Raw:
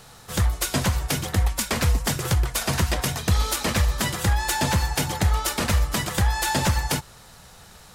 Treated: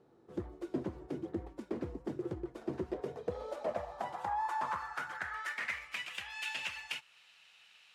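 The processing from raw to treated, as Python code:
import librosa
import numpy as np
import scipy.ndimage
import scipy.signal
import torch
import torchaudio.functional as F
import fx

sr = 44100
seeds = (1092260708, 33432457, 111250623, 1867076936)

y = fx.filter_sweep_bandpass(x, sr, from_hz=340.0, to_hz=2700.0, start_s=2.7, end_s=6.14, q=5.7)
y = fx.dynamic_eq(y, sr, hz=3900.0, q=1.1, threshold_db=-52.0, ratio=4.0, max_db=-4)
y = y * librosa.db_to_amplitude(1.0)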